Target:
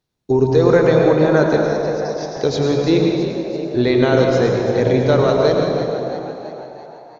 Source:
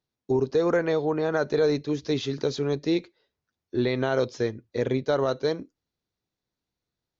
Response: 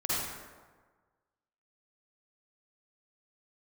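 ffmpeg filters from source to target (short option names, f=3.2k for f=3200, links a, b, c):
-filter_complex "[0:a]asettb=1/sr,asplit=3[a][b][c];[a]atrim=end=1.574[d];[b]atrim=start=1.57:end=2.37,asetpts=PTS-STARTPTS,afade=t=in:d=0.004:c=qsin,afade=t=out:st=0.796:d=0.004:c=qsin,asuperpass=centerf=5400:order=4:qfactor=4.2[e];[c]atrim=start=2.366[f];[d][e]acrossfade=d=0.004:c1=hsin:c2=qsin[g];[g][f]acrossfade=d=0.004:c1=qsin:c2=hsin,asplit=7[h][i][j][k][l][m][n];[i]adelay=334,afreqshift=58,volume=-11dB[o];[j]adelay=668,afreqshift=116,volume=-16dB[p];[k]adelay=1002,afreqshift=174,volume=-21.1dB[q];[l]adelay=1336,afreqshift=232,volume=-26.1dB[r];[m]adelay=1670,afreqshift=290,volume=-31.1dB[s];[n]adelay=2004,afreqshift=348,volume=-36.2dB[t];[h][o][p][q][r][s][t]amix=inputs=7:normalize=0,asplit=2[u][v];[1:a]atrim=start_sample=2205,asetrate=22932,aresample=44100,lowshelf=f=150:g=8[w];[v][w]afir=irnorm=-1:irlink=0,volume=-11.5dB[x];[u][x]amix=inputs=2:normalize=0,volume=5dB"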